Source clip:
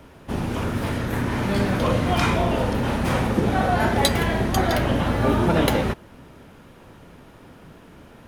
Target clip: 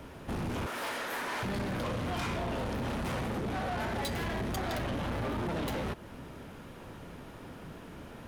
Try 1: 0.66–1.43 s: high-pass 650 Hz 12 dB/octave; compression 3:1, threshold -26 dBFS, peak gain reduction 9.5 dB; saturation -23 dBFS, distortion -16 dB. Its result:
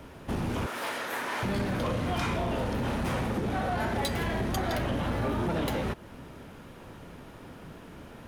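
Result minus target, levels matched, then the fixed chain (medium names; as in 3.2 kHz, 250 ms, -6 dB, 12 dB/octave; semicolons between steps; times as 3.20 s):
saturation: distortion -7 dB
0.66–1.43 s: high-pass 650 Hz 12 dB/octave; compression 3:1, threshold -26 dBFS, peak gain reduction 9.5 dB; saturation -31 dBFS, distortion -8 dB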